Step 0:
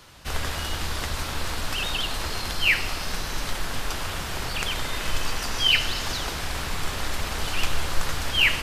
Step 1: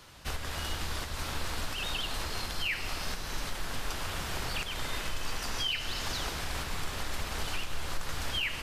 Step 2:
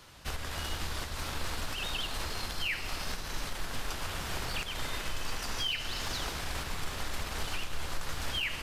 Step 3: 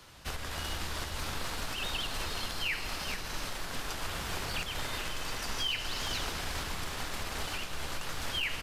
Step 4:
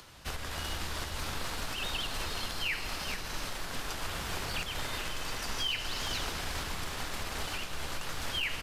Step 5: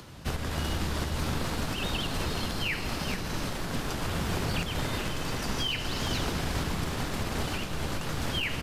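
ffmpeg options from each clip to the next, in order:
-af "alimiter=limit=0.112:level=0:latency=1:release=321,volume=0.668"
-af "aeval=exprs='0.075*(cos(1*acos(clip(val(0)/0.075,-1,1)))-cos(1*PI/2))+0.00237*(cos(6*acos(clip(val(0)/0.075,-1,1)))-cos(6*PI/2))':c=same,volume=0.891"
-filter_complex "[0:a]acrossover=split=120[s0][s1];[s0]alimiter=level_in=2.66:limit=0.0631:level=0:latency=1:release=434,volume=0.376[s2];[s2][s1]amix=inputs=2:normalize=0,aecho=1:1:425:0.376"
-af "acompressor=mode=upward:threshold=0.00282:ratio=2.5"
-af "equalizer=f=170:w=0.37:g=12.5,volume=1.12"

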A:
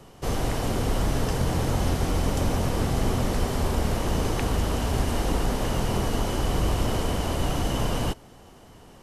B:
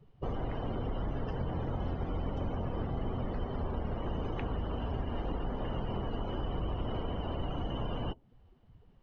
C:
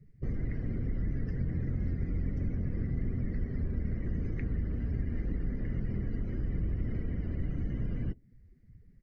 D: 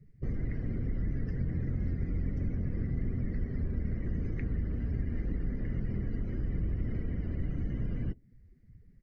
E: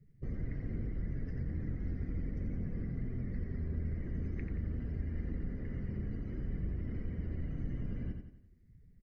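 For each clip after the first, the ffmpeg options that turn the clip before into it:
-af "afftdn=nr=22:nf=-36,lowpass=f=3900:w=0.5412,lowpass=f=3900:w=1.3066,acompressor=threshold=0.0158:ratio=2.5"
-af "firequalizer=gain_entry='entry(190,0);entry(870,-29);entry(2000,2);entry(3000,-26);entry(4600,-6)':delay=0.05:min_phase=1,volume=1.5"
-af anull
-af "aecho=1:1:88|176|264|352|440:0.501|0.221|0.097|0.0427|0.0188,volume=0.531"

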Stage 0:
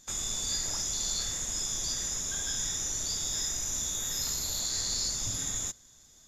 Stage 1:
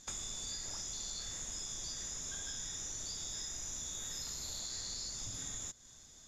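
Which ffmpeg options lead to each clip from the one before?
-af "lowpass=8900,acompressor=threshold=0.00891:ratio=6,volume=1.12"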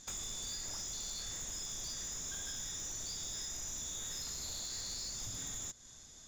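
-af "aeval=exprs='0.0422*(cos(1*acos(clip(val(0)/0.0422,-1,1)))-cos(1*PI/2))+0.0106*(cos(5*acos(clip(val(0)/0.0422,-1,1)))-cos(5*PI/2))':c=same,volume=0.562"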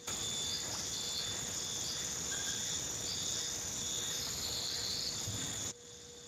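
-af "aeval=exprs='val(0)+0.000631*sin(2*PI*480*n/s)':c=same,volume=2.37" -ar 32000 -c:a libspeex -b:a 24k

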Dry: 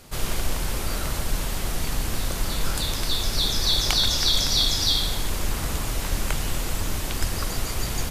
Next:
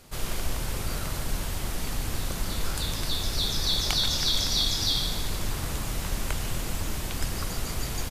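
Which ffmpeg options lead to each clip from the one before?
-filter_complex "[0:a]asplit=8[s0][s1][s2][s3][s4][s5][s6][s7];[s1]adelay=146,afreqshift=47,volume=0.251[s8];[s2]adelay=292,afreqshift=94,volume=0.151[s9];[s3]adelay=438,afreqshift=141,volume=0.0902[s10];[s4]adelay=584,afreqshift=188,volume=0.0543[s11];[s5]adelay=730,afreqshift=235,volume=0.0327[s12];[s6]adelay=876,afreqshift=282,volume=0.0195[s13];[s7]adelay=1022,afreqshift=329,volume=0.0117[s14];[s0][s8][s9][s10][s11][s12][s13][s14]amix=inputs=8:normalize=0,volume=0.596"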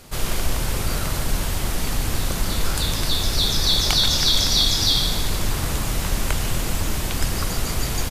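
-af "acontrast=89"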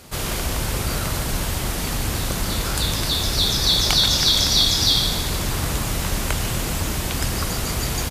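-af "highpass=40,volume=1.19"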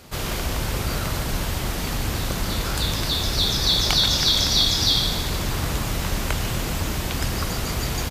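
-af "equalizer=f=9700:t=o:w=0.96:g=-5.5,volume=0.891"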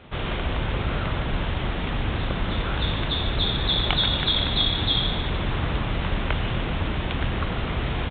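-af "aresample=8000,aresample=44100"

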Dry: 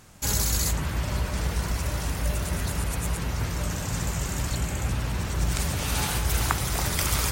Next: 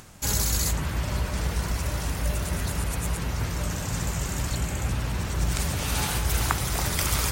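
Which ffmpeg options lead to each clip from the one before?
-af "acompressor=mode=upward:threshold=0.00708:ratio=2.5"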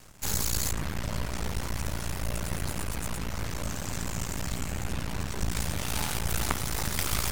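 -af "aeval=exprs='max(val(0),0)':c=same,bandreject=f=60:t=h:w=6,bandreject=f=120:t=h:w=6"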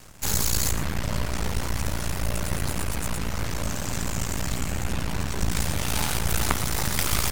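-af "aecho=1:1:119:0.2,volume=1.68"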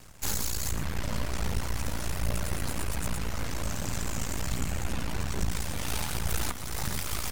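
-af "alimiter=limit=0.251:level=0:latency=1:release=490,aphaser=in_gain=1:out_gain=1:delay=4.4:decay=0.27:speed=1.3:type=triangular,volume=0.596"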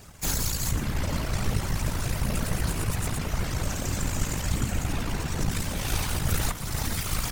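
-af "afftfilt=real='hypot(re,im)*cos(2*PI*random(0))':imag='hypot(re,im)*sin(2*PI*random(1))':win_size=512:overlap=0.75,volume=2.82"

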